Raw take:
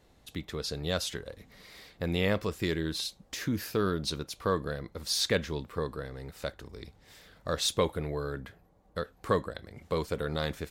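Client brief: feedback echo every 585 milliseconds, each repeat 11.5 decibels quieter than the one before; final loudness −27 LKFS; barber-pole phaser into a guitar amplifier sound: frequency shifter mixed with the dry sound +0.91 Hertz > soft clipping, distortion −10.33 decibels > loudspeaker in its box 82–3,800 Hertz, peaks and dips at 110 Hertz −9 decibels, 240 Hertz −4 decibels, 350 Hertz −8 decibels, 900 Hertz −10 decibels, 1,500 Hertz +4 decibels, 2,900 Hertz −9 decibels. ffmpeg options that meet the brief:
ffmpeg -i in.wav -filter_complex "[0:a]aecho=1:1:585|1170|1755:0.266|0.0718|0.0194,asplit=2[link_01][link_02];[link_02]afreqshift=0.91[link_03];[link_01][link_03]amix=inputs=2:normalize=1,asoftclip=threshold=-29dB,highpass=82,equalizer=frequency=110:width_type=q:width=4:gain=-9,equalizer=frequency=240:width_type=q:width=4:gain=-4,equalizer=frequency=350:width_type=q:width=4:gain=-8,equalizer=frequency=900:width_type=q:width=4:gain=-10,equalizer=frequency=1500:width_type=q:width=4:gain=4,equalizer=frequency=2900:width_type=q:width=4:gain=-9,lowpass=frequency=3800:width=0.5412,lowpass=frequency=3800:width=1.3066,volume=15dB" out.wav

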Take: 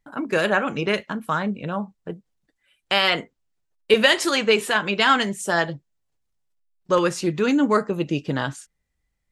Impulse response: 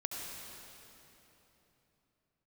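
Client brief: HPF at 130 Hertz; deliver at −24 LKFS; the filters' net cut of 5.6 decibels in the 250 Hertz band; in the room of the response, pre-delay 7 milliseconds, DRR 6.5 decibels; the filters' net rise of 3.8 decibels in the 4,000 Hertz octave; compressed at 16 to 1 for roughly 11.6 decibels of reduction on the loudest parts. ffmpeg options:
-filter_complex "[0:a]highpass=130,equalizer=frequency=250:width_type=o:gain=-7,equalizer=frequency=4000:width_type=o:gain=5.5,acompressor=threshold=-22dB:ratio=16,asplit=2[link_01][link_02];[1:a]atrim=start_sample=2205,adelay=7[link_03];[link_02][link_03]afir=irnorm=-1:irlink=0,volume=-8dB[link_04];[link_01][link_04]amix=inputs=2:normalize=0,volume=3.5dB"

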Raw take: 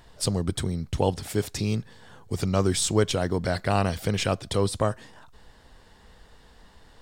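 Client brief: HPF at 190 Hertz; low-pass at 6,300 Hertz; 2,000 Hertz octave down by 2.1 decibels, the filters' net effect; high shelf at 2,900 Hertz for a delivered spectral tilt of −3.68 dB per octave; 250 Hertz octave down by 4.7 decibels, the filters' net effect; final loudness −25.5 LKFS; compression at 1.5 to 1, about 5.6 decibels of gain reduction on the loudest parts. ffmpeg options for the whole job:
ffmpeg -i in.wav -af "highpass=190,lowpass=6300,equalizer=frequency=250:width_type=o:gain=-4,equalizer=frequency=2000:width_type=o:gain=-4.5,highshelf=frequency=2900:gain=4,acompressor=threshold=-35dB:ratio=1.5,volume=8dB" out.wav

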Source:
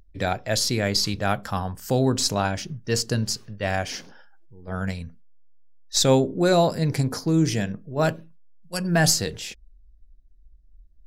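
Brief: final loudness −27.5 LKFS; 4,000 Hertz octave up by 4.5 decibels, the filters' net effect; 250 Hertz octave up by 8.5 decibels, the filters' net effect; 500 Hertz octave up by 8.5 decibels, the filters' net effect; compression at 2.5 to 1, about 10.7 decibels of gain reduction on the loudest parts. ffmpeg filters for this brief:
ffmpeg -i in.wav -af "equalizer=frequency=250:width_type=o:gain=9,equalizer=frequency=500:width_type=o:gain=8,equalizer=frequency=4000:width_type=o:gain=5.5,acompressor=threshold=-21dB:ratio=2.5,volume=-3.5dB" out.wav

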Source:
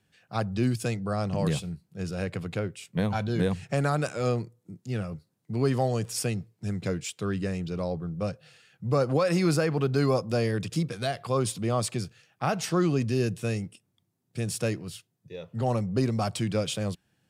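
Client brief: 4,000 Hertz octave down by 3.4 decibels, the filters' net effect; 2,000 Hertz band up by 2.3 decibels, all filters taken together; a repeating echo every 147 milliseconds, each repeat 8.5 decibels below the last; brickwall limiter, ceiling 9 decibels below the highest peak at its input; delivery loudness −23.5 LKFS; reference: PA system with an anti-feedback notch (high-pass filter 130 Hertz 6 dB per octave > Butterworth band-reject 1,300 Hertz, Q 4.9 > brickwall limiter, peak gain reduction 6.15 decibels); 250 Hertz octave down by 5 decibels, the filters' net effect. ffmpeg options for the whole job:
ffmpeg -i in.wav -af "equalizer=frequency=250:width_type=o:gain=-5.5,equalizer=frequency=2000:width_type=o:gain=5,equalizer=frequency=4000:width_type=o:gain=-6,alimiter=limit=-21dB:level=0:latency=1,highpass=frequency=130:poles=1,asuperstop=centerf=1300:order=8:qfactor=4.9,aecho=1:1:147|294|441|588:0.376|0.143|0.0543|0.0206,volume=12dB,alimiter=limit=-13dB:level=0:latency=1" out.wav

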